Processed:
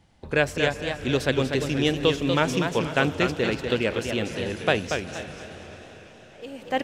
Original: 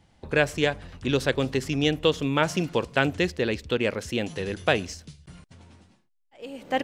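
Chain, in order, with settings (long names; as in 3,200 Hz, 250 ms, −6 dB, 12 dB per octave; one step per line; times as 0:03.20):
on a send: feedback delay with all-pass diffusion 478 ms, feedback 57%, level −15 dB
on the sum: feedback echo with a swinging delay time 239 ms, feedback 36%, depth 141 cents, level −6 dB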